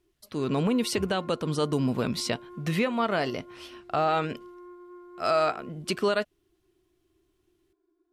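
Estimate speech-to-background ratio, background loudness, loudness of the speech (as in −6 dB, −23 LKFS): 19.5 dB, −47.5 LKFS, −28.0 LKFS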